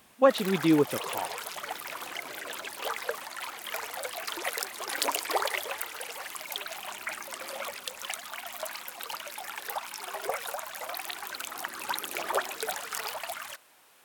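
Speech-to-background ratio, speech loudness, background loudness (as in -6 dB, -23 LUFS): 8.5 dB, -26.5 LUFS, -35.0 LUFS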